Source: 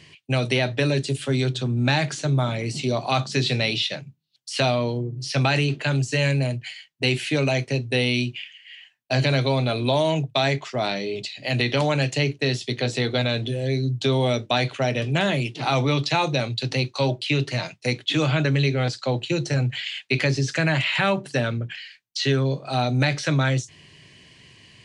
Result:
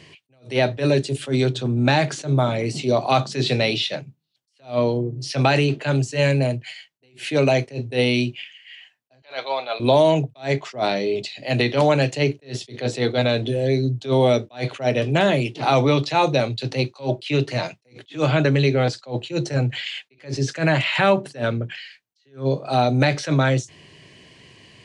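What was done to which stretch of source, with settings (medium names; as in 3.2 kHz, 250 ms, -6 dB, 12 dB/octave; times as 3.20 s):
9.22–9.80 s: Chebyshev band-pass 800–3900 Hz
whole clip: peaking EQ 510 Hz +7 dB 2.3 oct; attacks held to a fixed rise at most 220 dB/s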